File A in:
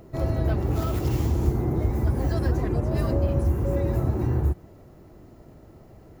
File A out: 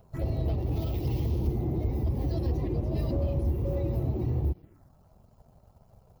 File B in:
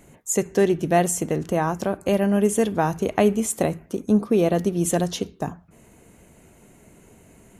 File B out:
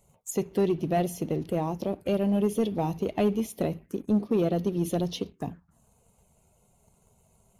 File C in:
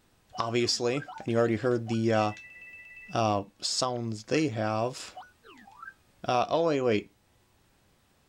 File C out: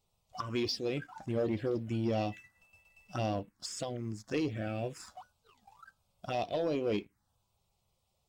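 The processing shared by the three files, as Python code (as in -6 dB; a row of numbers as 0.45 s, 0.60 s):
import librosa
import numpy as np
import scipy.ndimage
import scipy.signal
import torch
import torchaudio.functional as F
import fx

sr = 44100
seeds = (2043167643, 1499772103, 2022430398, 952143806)

y = fx.spec_quant(x, sr, step_db=15)
y = fx.env_phaser(y, sr, low_hz=280.0, high_hz=1500.0, full_db=-23.0)
y = fx.leveller(y, sr, passes=1)
y = y * librosa.db_to_amplitude(-7.0)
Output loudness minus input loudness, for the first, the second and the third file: -5.0 LU, -6.0 LU, -6.5 LU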